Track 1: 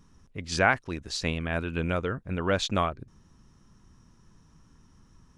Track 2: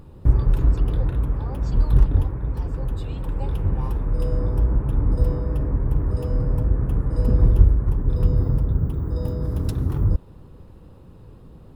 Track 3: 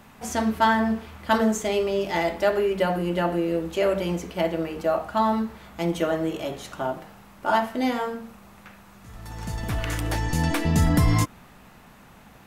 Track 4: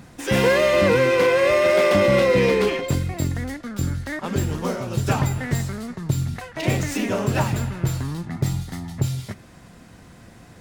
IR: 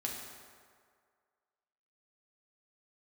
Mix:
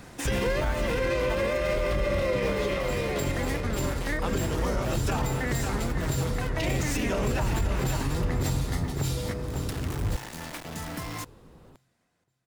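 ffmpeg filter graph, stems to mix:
-filter_complex "[0:a]volume=-9.5dB,asplit=2[a][b];[1:a]volume=0dB[c];[2:a]aeval=exprs='val(0)*gte(abs(val(0)),0.0794)':c=same,volume=-10.5dB[d];[3:a]volume=2dB,asplit=2[e][f];[f]volume=-11dB[g];[b]apad=whole_len=467759[h];[e][h]sidechaincompress=threshold=-39dB:ratio=8:attack=16:release=489[i];[g]aecho=0:1:544|1088|1632|2176|2720|3264:1|0.4|0.16|0.064|0.0256|0.0102[j];[a][c][d][i][j]amix=inputs=5:normalize=0,lowshelf=f=260:g=-10.5,acrossover=split=400[k][l];[l]acompressor=threshold=-30dB:ratio=2[m];[k][m]amix=inputs=2:normalize=0,alimiter=limit=-18dB:level=0:latency=1:release=33"

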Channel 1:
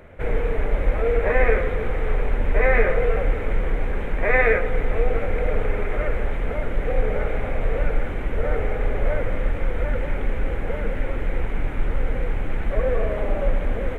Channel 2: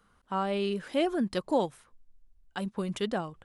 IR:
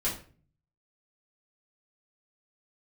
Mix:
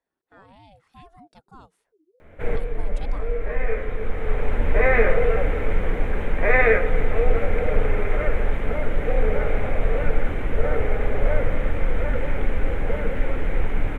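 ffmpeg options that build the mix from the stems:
-filter_complex "[0:a]adelay=2200,volume=0dB,asplit=2[a][b];[b]volume=-18.5dB[c];[1:a]aeval=exprs='val(0)*sin(2*PI*410*n/s+410*0.25/3.2*sin(2*PI*3.2*n/s))':c=same,volume=-6.5dB,afade=t=in:st=1.57:d=0.7:silence=0.281838,asplit=2[d][e];[e]apad=whole_len=713829[f];[a][f]sidechaincompress=threshold=-58dB:ratio=8:attack=16:release=842[g];[2:a]atrim=start_sample=2205[h];[c][h]afir=irnorm=-1:irlink=0[i];[g][d][i]amix=inputs=3:normalize=0"

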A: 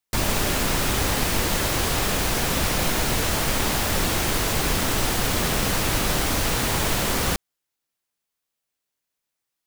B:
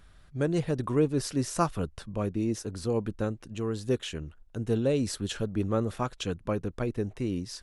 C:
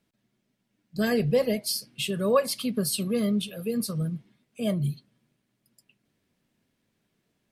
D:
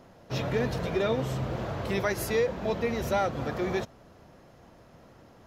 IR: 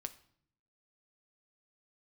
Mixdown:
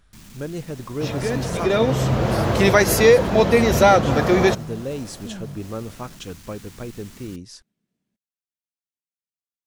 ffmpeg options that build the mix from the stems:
-filter_complex "[0:a]asoftclip=type=tanh:threshold=-21dB,equalizer=f=560:t=o:w=1.5:g=-13,volume=-19.5dB[a];[1:a]volume=-3dB[b];[2:a]adelay=650,volume=-10.5dB[c];[3:a]dynaudnorm=f=180:g=13:m=12dB,adelay=700,volume=2dB[d];[a][c]amix=inputs=2:normalize=0,equalizer=f=200:w=1.3:g=11,acompressor=threshold=-33dB:ratio=6,volume=0dB[e];[b][d][e]amix=inputs=3:normalize=0,equalizer=f=6.5k:w=1.5:g=3"

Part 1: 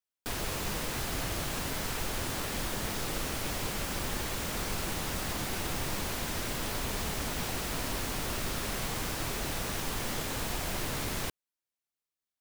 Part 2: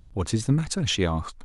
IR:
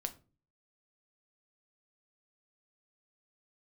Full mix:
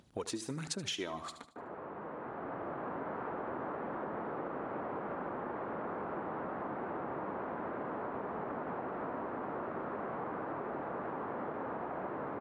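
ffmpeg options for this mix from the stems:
-filter_complex "[0:a]lowpass=f=1.3k:w=0.5412,lowpass=f=1.3k:w=1.3066,dynaudnorm=f=260:g=11:m=11.5dB,adelay=1300,volume=-5dB[a];[1:a]aphaser=in_gain=1:out_gain=1:delay=3.2:decay=0.47:speed=1.4:type=sinusoidal,volume=-0.5dB,asplit=2[b][c];[c]volume=-15dB,aecho=0:1:75|150|225|300|375|450:1|0.42|0.176|0.0741|0.0311|0.0131[d];[a][b][d]amix=inputs=3:normalize=0,highpass=280,acompressor=threshold=-36dB:ratio=6"

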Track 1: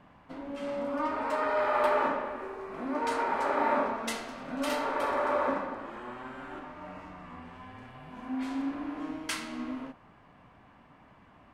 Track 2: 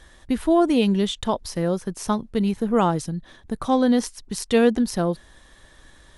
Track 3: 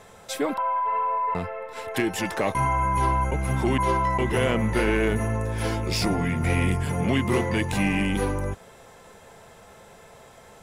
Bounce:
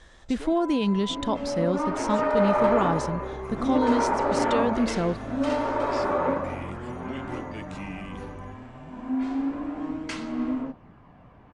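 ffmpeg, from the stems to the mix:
-filter_complex "[0:a]tiltshelf=f=970:g=5.5,aphaser=in_gain=1:out_gain=1:delay=3.3:decay=0.26:speed=0.31:type=sinusoidal,adelay=800,volume=2dB[a];[1:a]alimiter=limit=-14dB:level=0:latency=1,volume=-2.5dB[b];[2:a]volume=-14.5dB[c];[a][b][c]amix=inputs=3:normalize=0,lowpass=f=7.8k:w=0.5412,lowpass=f=7.8k:w=1.3066"

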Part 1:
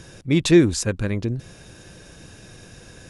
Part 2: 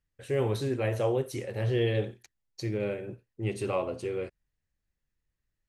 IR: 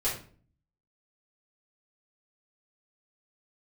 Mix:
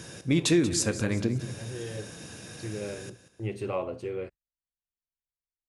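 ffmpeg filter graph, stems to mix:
-filter_complex "[0:a]highpass=100,highshelf=f=7.9k:g=6,acompressor=threshold=-24dB:ratio=2.5,volume=-0.5dB,asplit=4[a][b][c][d];[b]volume=-16.5dB[e];[c]volume=-13dB[f];[1:a]agate=range=-22dB:threshold=-44dB:ratio=16:detection=peak,aemphasis=mode=reproduction:type=cd,volume=-1.5dB[g];[d]apad=whole_len=250702[h];[g][h]sidechaincompress=threshold=-44dB:ratio=3:attack=16:release=1050[i];[2:a]atrim=start_sample=2205[j];[e][j]afir=irnorm=-1:irlink=0[k];[f]aecho=0:1:185|370|555|740|925|1110:1|0.44|0.194|0.0852|0.0375|0.0165[l];[a][i][k][l]amix=inputs=4:normalize=0"

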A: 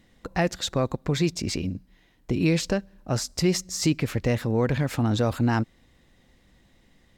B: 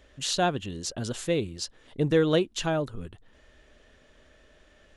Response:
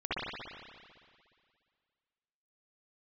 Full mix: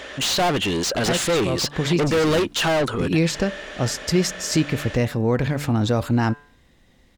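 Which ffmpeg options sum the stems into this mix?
-filter_complex "[0:a]bandreject=f=145.2:t=h:w=4,bandreject=f=290.4:t=h:w=4,bandreject=f=435.6:t=h:w=4,bandreject=f=580.8:t=h:w=4,bandreject=f=726:t=h:w=4,bandreject=f=871.2:t=h:w=4,bandreject=f=1.0164k:t=h:w=4,bandreject=f=1.1616k:t=h:w=4,bandreject=f=1.3068k:t=h:w=4,bandreject=f=1.452k:t=h:w=4,bandreject=f=1.5972k:t=h:w=4,bandreject=f=1.7424k:t=h:w=4,bandreject=f=1.8876k:t=h:w=4,bandreject=f=2.0328k:t=h:w=4,bandreject=f=2.178k:t=h:w=4,bandreject=f=2.3232k:t=h:w=4,bandreject=f=2.4684k:t=h:w=4,bandreject=f=2.6136k:t=h:w=4,bandreject=f=2.7588k:t=h:w=4,bandreject=f=2.904k:t=h:w=4,bandreject=f=3.0492k:t=h:w=4,adelay=700,volume=3dB[a];[1:a]asplit=2[b][c];[c]highpass=f=720:p=1,volume=35dB,asoftclip=type=tanh:threshold=-11.5dB[d];[b][d]amix=inputs=2:normalize=0,lowpass=f=4.3k:p=1,volume=-6dB,volume=-1.5dB,asplit=2[e][f];[f]apad=whole_len=347247[g];[a][g]sidechaincompress=threshold=-25dB:ratio=8:attack=16:release=220[h];[h][e]amix=inputs=2:normalize=0"

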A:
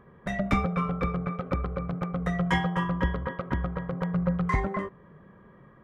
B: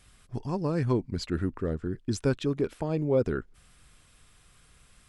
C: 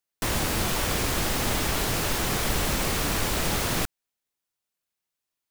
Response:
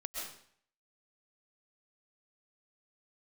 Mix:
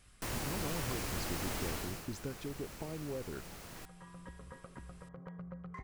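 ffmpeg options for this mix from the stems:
-filter_complex "[0:a]acompressor=threshold=-28dB:ratio=6,adelay=1250,volume=-15.5dB[a];[1:a]acompressor=threshold=-35dB:ratio=6,volume=-4dB,asplit=2[b][c];[2:a]volume=-12.5dB,afade=t=out:st=1.69:d=0.38:silence=0.281838[d];[c]apad=whole_len=312638[e];[a][e]sidechaincompress=threshold=-57dB:ratio=8:attack=16:release=805[f];[f][b][d]amix=inputs=3:normalize=0,equalizer=f=3.5k:t=o:w=0.28:g=-3.5"

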